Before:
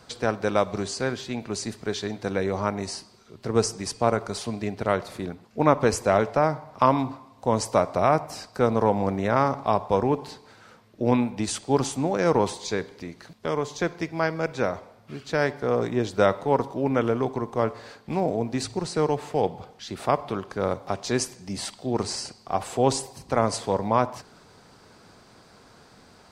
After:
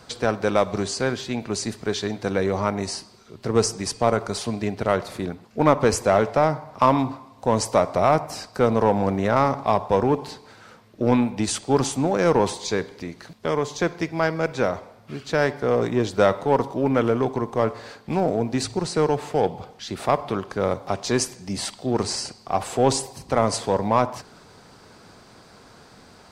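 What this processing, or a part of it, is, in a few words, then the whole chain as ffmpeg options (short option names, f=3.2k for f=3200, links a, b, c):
parallel distortion: -filter_complex "[0:a]asplit=2[a][b];[b]asoftclip=type=hard:threshold=-20dB,volume=-5.5dB[c];[a][c]amix=inputs=2:normalize=0"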